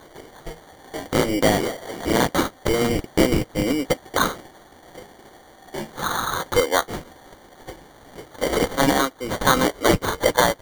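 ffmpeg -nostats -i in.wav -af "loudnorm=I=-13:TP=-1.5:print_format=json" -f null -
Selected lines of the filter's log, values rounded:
"input_i" : "-21.4",
"input_tp" : "-4.0",
"input_lra" : "4.5",
"input_thresh" : "-32.8",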